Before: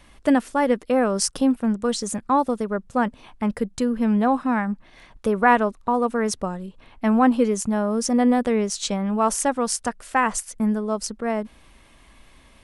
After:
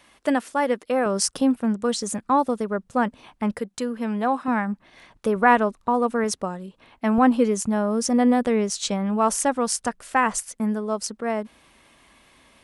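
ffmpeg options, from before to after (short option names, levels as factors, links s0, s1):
-af "asetnsamples=n=441:p=0,asendcmd='1.06 highpass f 110;3.59 highpass f 430;4.48 highpass f 130;5.36 highpass f 60;6.24 highpass f 180;7.18 highpass f 51;10.53 highpass f 200',highpass=f=400:p=1"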